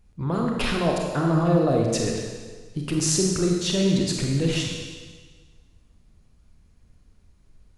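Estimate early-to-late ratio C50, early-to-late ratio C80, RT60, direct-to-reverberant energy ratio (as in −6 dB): 1.5 dB, 3.0 dB, 1.5 s, −0.5 dB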